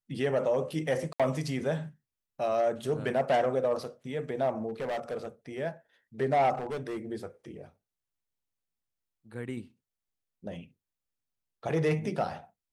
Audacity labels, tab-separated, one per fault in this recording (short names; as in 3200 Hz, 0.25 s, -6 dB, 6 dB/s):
1.130000	1.200000	gap 66 ms
4.690000	5.260000	clipped -29.5 dBFS
6.550000	7.060000	clipped -31 dBFS